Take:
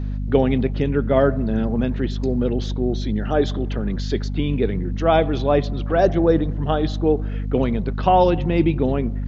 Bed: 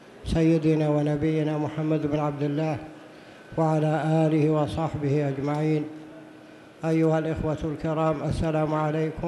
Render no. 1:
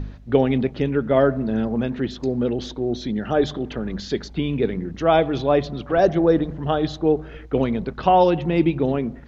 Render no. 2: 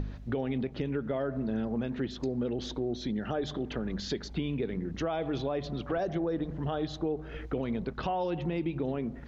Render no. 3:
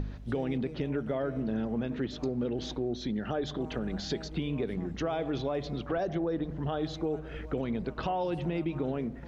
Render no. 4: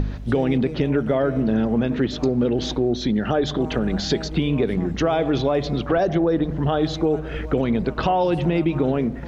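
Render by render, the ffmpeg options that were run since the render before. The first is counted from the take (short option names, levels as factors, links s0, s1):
-af "bandreject=f=50:t=h:w=4,bandreject=f=100:t=h:w=4,bandreject=f=150:t=h:w=4,bandreject=f=200:t=h:w=4,bandreject=f=250:t=h:w=4"
-af "alimiter=limit=0.224:level=0:latency=1:release=75,acompressor=threshold=0.0224:ratio=2.5"
-filter_complex "[1:a]volume=0.0668[s0];[0:a][s0]amix=inputs=2:normalize=0"
-af "volume=3.76"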